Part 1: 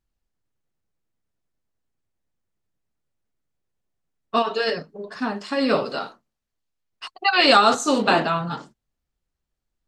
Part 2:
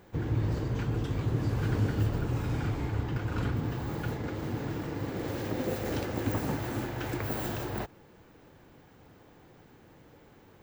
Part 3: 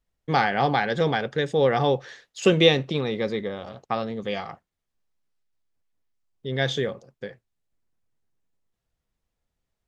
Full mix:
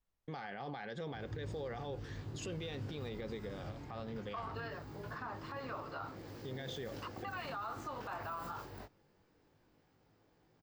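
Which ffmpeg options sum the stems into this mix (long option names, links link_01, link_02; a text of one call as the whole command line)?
ffmpeg -i stem1.wav -i stem2.wav -i stem3.wav -filter_complex "[0:a]acompressor=threshold=-26dB:ratio=6,bandpass=frequency=1100:width_type=q:width=2:csg=0,volume=-3dB[link_01];[1:a]equalizer=frequency=4900:width_type=o:width=0.35:gain=7.5,flanger=delay=18.5:depth=3.1:speed=0.21,adelay=1000,volume=-12dB[link_02];[2:a]alimiter=limit=-14.5dB:level=0:latency=1:release=17,acompressor=threshold=-40dB:ratio=1.5,volume=-7.5dB[link_03];[link_01][link_02][link_03]amix=inputs=3:normalize=0,alimiter=level_in=9.5dB:limit=-24dB:level=0:latency=1:release=66,volume=-9.5dB" out.wav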